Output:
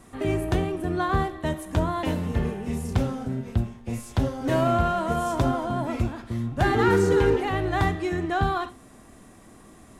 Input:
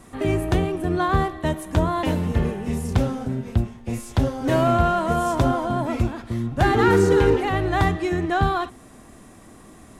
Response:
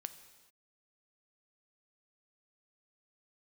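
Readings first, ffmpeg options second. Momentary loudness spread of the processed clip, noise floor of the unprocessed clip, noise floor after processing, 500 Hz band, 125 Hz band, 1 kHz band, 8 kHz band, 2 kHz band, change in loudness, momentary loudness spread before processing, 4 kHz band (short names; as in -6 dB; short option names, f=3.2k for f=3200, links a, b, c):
9 LU, -47 dBFS, -50 dBFS, -3.5 dB, -3.5 dB, -3.5 dB, -3.5 dB, -3.0 dB, -3.5 dB, 9 LU, -3.5 dB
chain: -filter_complex "[1:a]atrim=start_sample=2205,atrim=end_sample=3969[a];[0:a][a]afir=irnorm=-1:irlink=0"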